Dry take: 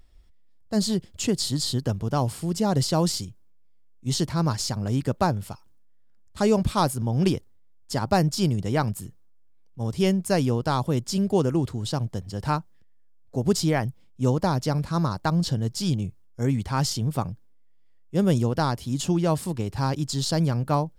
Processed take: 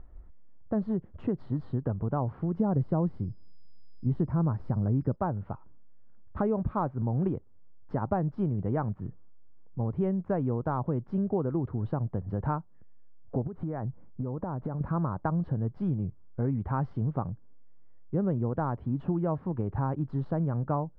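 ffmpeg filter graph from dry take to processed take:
-filter_complex "[0:a]asettb=1/sr,asplit=3[a][b][c];[a]atrim=end=2.594[d];[b]atrim=start=2.59:end=5.16,asetpts=PTS-STARTPTS,afade=t=in:d=0.004:c=qsin,afade=t=out:st=2.566:d=0.004:c=qsin,deesser=0.5,lowshelf=f=450:g=8,aeval=exprs='val(0)+0.0224*sin(2*PI*5000*n/s)':c=same[e];[c]atrim=start=5.156[f];[d][e]acrossfade=d=0.004:c1=hsin:c2=qsin[g];[g][f]acrossfade=d=0.004:c1=qsin:c2=hsin,asettb=1/sr,asplit=3[h][i][j];[h]atrim=end=13.474[k];[i]atrim=start=13.47:end=14.81,asetpts=PTS-STARTPTS,afade=t=in:d=0.004:c=qsin,afade=t=out:st=1.336:d=0.004:c=qsin,lowpass=2k,acompressor=threshold=-33dB:ratio=10:attack=3.2:release=140:knee=1:detection=peak[l];[j]atrim=start=14.806[m];[k][l]acrossfade=d=0.004:c1=hsin:c2=qsin[n];[n][m]acrossfade=d=0.004:c1=qsin:c2=hsin,acompressor=threshold=-37dB:ratio=3,lowpass=f=1.4k:w=0.5412,lowpass=f=1.4k:w=1.3066,volume=7dB"

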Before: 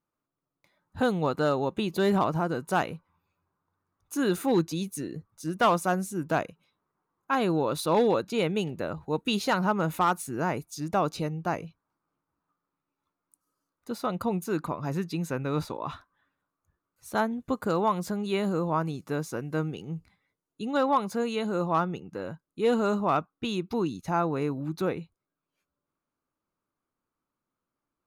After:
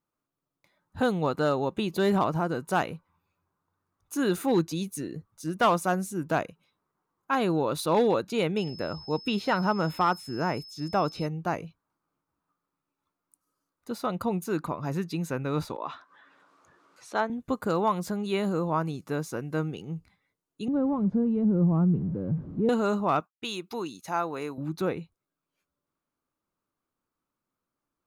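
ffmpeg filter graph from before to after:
-filter_complex "[0:a]asettb=1/sr,asplit=3[a][b][c];[a]atrim=end=8.574[d];[b]atrim=start=8.57:end=11.26,asetpts=PTS-STARTPTS,afade=t=in:d=0.004:c=qsin,afade=t=out:st=2.686:d=0.004:c=qsin,acrossover=split=3500[e][f];[f]acompressor=threshold=-49dB:ratio=4:attack=1:release=60[g];[e][g]amix=inputs=2:normalize=0,aeval=exprs='val(0)+0.00631*sin(2*PI*5200*n/s)':c=same[h];[c]atrim=start=11.256[i];[d][h]acrossfade=d=0.004:c1=hsin:c2=qsin[j];[j][i]acrossfade=d=0.004:c1=qsin:c2=hsin,asettb=1/sr,asplit=3[k][l][m];[k]atrim=end=15.764[n];[l]atrim=start=15.76:end=17.3,asetpts=PTS-STARTPTS,afade=t=in:d=0.004:c=qsin,afade=t=out:st=1.536:d=0.004:c=qsin,highpass=310,lowpass=5.4k,acompressor=mode=upward:threshold=-41dB:ratio=2.5:attack=3.2:release=140:knee=2.83:detection=peak[o];[m]atrim=start=17.296[p];[n][o]acrossfade=d=0.004:c1=hsin:c2=qsin[q];[q][p]acrossfade=d=0.004:c1=qsin:c2=hsin,asettb=1/sr,asplit=3[r][s][t];[r]atrim=end=20.684[u];[s]atrim=start=20.68:end=22.69,asetpts=PTS-STARTPTS,afade=t=in:d=0.004:c=qsin,afade=t=out:st=2.006:d=0.004:c=qsin,aeval=exprs='val(0)+0.5*0.0178*sgn(val(0))':c=same,bandpass=f=170:t=q:w=0.91,aemphasis=mode=reproduction:type=riaa[v];[t]atrim=start=22.686[w];[u][v]acrossfade=d=0.004:c1=hsin:c2=qsin[x];[x][w]acrossfade=d=0.004:c1=qsin:c2=hsin,asettb=1/sr,asplit=3[y][z][aa];[y]atrim=end=23.204[ab];[z]atrim=start=23.2:end=24.58,asetpts=PTS-STARTPTS,afade=t=in:d=0.004:c=qsin,afade=t=out:st=1.376:d=0.004:c=qsin,highpass=f=580:p=1,agate=range=-33dB:threshold=-60dB:ratio=3:release=100:detection=peak,highshelf=f=5.2k:g=6[ac];[aa]atrim=start=24.576[ad];[ab][ac]acrossfade=d=0.004:c1=hsin:c2=qsin[ae];[ae][ad]acrossfade=d=0.004:c1=qsin:c2=hsin"

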